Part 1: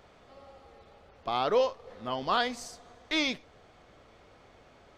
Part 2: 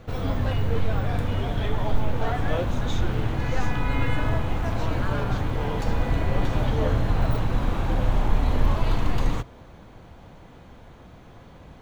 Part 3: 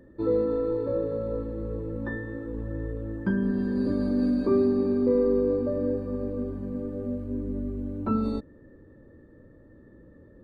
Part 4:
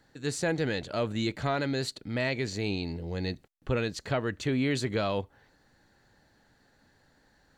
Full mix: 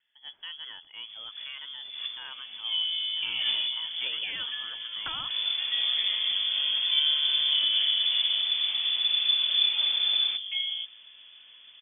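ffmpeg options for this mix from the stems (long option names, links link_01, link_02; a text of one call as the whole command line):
ffmpeg -i stem1.wav -i stem2.wav -i stem3.wav -i stem4.wav -filter_complex "[0:a]alimiter=limit=-22dB:level=0:latency=1,acompressor=threshold=-36dB:ratio=6,adelay=1950,volume=3dB[link_01];[1:a]adelay=950,volume=-7dB[link_02];[2:a]adelay=2450,volume=-5.5dB[link_03];[3:a]volume=-12.5dB,asplit=2[link_04][link_05];[link_05]apad=whole_len=562950[link_06];[link_02][link_06]sidechaincompress=threshold=-60dB:ratio=12:attack=25:release=114[link_07];[link_01][link_07][link_03][link_04]amix=inputs=4:normalize=0,lowpass=frequency=3000:width_type=q:width=0.5098,lowpass=frequency=3000:width_type=q:width=0.6013,lowpass=frequency=3000:width_type=q:width=0.9,lowpass=frequency=3000:width_type=q:width=2.563,afreqshift=-3500" out.wav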